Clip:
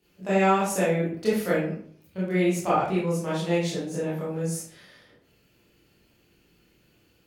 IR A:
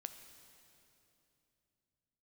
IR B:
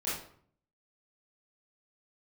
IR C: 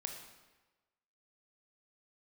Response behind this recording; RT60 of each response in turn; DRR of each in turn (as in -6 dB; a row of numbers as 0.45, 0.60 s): B; 2.9, 0.60, 1.2 s; 8.0, -10.5, 3.0 dB